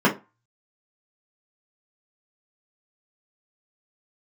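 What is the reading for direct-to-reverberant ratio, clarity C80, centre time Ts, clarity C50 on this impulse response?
-4.5 dB, 21.5 dB, 16 ms, 13.5 dB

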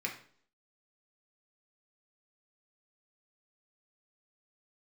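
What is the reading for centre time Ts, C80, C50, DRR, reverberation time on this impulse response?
19 ms, 13.0 dB, 8.5 dB, -0.5 dB, 0.55 s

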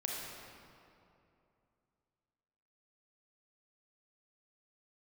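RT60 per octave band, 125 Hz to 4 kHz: 3.1, 2.9, 2.8, 2.6, 2.1, 1.6 s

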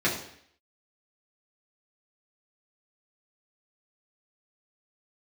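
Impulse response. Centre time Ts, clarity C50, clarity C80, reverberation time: 34 ms, 6.5 dB, 10.0 dB, 0.65 s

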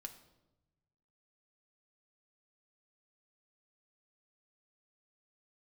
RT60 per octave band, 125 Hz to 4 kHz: 1.8, 1.3, 1.1, 0.85, 0.70, 0.70 s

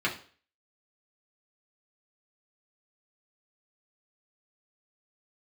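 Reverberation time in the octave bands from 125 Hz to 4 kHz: 0.40, 0.40, 0.45, 0.40, 0.40, 0.45 s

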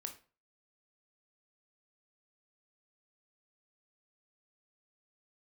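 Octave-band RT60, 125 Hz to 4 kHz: 0.40, 0.35, 0.40, 0.35, 0.35, 0.30 s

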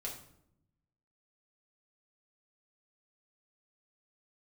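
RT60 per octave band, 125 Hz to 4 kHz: 1.4, 1.2, 0.80, 0.65, 0.55, 0.50 s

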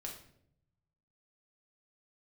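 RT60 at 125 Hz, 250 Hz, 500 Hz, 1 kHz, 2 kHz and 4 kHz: 1.5, 1.0, 0.80, 0.55, 0.55, 0.50 s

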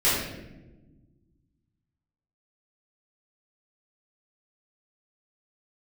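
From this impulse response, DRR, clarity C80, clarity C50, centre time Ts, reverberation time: -13.0 dB, 3.5 dB, 0.0 dB, 69 ms, not exponential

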